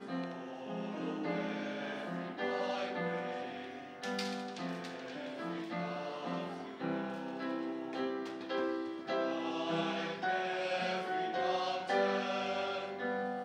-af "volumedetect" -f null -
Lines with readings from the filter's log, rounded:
mean_volume: -37.3 dB
max_volume: -21.2 dB